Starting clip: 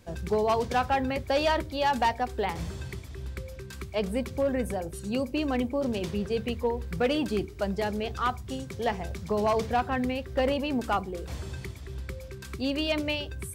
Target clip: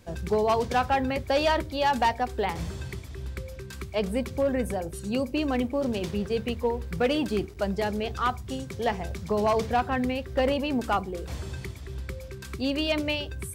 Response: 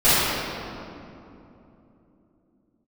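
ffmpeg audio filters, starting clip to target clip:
-filter_complex "[0:a]asettb=1/sr,asplit=3[a][b][c];[a]atrim=end=5.524[d];[b]atrim=start=5.52:end=7.57,asetpts=PTS-STARTPTS,afade=t=in:d=0.004:c=qsin,afade=t=out:st=2.046:d=0.004:c=qsin,aeval=exprs='sgn(val(0))*max(abs(val(0))-0.00188,0)':c=same[e];[c]atrim=start=7.566[f];[d][e]acrossfade=d=0.004:c1=hsin:c2=qsin[g];[g][f]acrossfade=d=0.004:c1=qsin:c2=hsin,volume=1.5dB"

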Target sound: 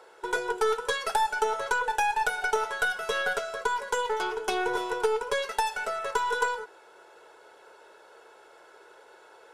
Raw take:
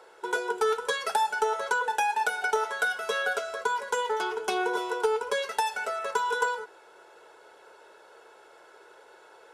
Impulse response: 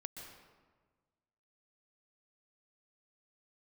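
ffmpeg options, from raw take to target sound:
-af "aeval=exprs='0.251*(cos(1*acos(clip(val(0)/0.251,-1,1)))-cos(1*PI/2))+0.0126*(cos(6*acos(clip(val(0)/0.251,-1,1)))-cos(6*PI/2))':c=same"

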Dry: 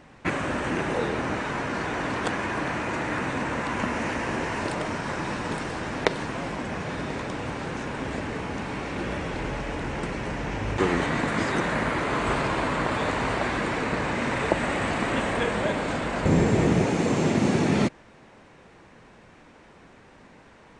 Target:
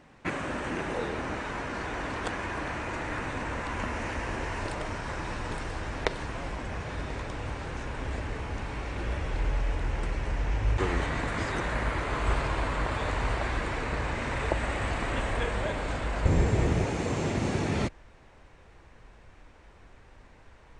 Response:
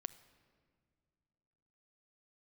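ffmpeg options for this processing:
-af "asubboost=boost=8.5:cutoff=64,volume=-5dB"

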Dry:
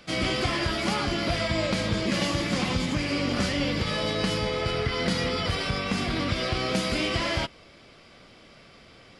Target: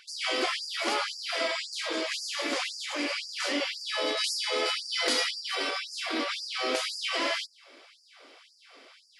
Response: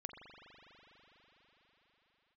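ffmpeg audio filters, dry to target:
-filter_complex "[0:a]asettb=1/sr,asplit=3[a][b][c];[a]atrim=end=4.174[d];[b]atrim=start=4.17:end=5.31,asetpts=PTS-STARTPTS,afade=t=in:d=0.004:c=qsin,afade=t=out:st=1.136:d=0.004:c=qsin,highshelf=f=4.1k:g=9.5[e];[c]atrim=start=5.306[f];[d][e]acrossfade=d=0.004:c1=hsin:c2=qsin[g];[g][f]acrossfade=d=0.004:c1=qsin:c2=hsin,afftfilt=real='re*gte(b*sr/1024,220*pow(4600/220,0.5+0.5*sin(2*PI*1.9*pts/sr)))':imag='im*gte(b*sr/1024,220*pow(4600/220,0.5+0.5*sin(2*PI*1.9*pts/sr)))':win_size=1024:overlap=0.75"

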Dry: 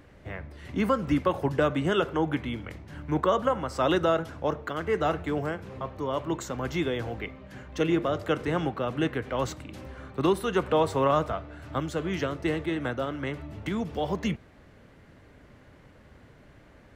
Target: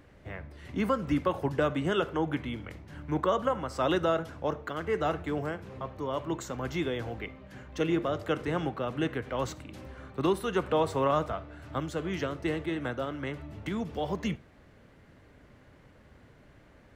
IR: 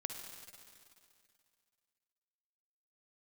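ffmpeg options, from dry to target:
-filter_complex "[0:a]asplit=2[a][b];[1:a]atrim=start_sample=2205,atrim=end_sample=3969[c];[b][c]afir=irnorm=-1:irlink=0,volume=-9dB[d];[a][d]amix=inputs=2:normalize=0,volume=-5dB"

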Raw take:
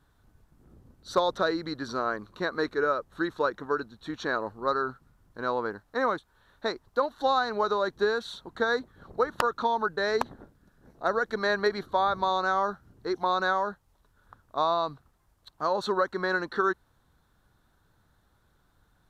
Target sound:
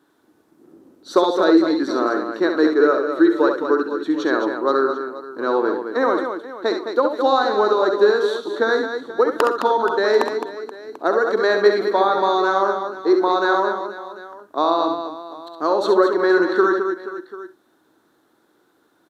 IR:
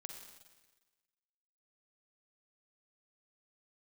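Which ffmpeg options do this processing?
-filter_complex "[0:a]highpass=f=320:t=q:w=4,aecho=1:1:67|213|478|740:0.473|0.422|0.168|0.119,asplit=2[a][b];[1:a]atrim=start_sample=2205,atrim=end_sample=3969[c];[b][c]afir=irnorm=-1:irlink=0,volume=2.5dB[d];[a][d]amix=inputs=2:normalize=0"

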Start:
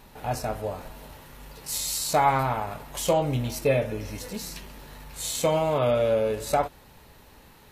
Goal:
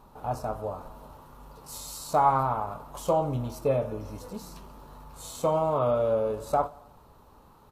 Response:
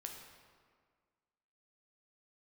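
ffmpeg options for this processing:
-af "highshelf=f=1.5k:t=q:w=3:g=-7.5,aecho=1:1:88|176|264|352:0.0794|0.0437|0.024|0.0132,volume=-3.5dB"

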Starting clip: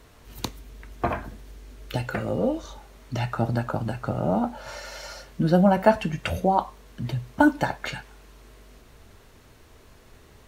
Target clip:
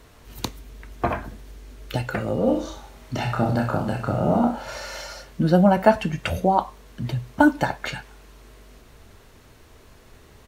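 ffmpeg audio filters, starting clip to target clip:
-filter_complex "[0:a]asplit=3[a][b][c];[a]afade=t=out:st=2.46:d=0.02[d];[b]aecho=1:1:30|63|99.3|139.2|183.2:0.631|0.398|0.251|0.158|0.1,afade=t=in:st=2.46:d=0.02,afade=t=out:st=5.03:d=0.02[e];[c]afade=t=in:st=5.03:d=0.02[f];[d][e][f]amix=inputs=3:normalize=0,volume=2dB"

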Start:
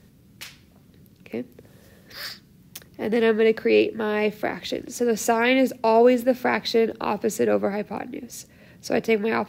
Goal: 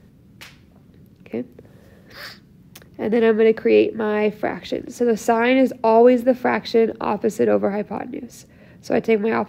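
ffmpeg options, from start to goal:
-af "highshelf=f=2.7k:g=-10.5,volume=4dB"

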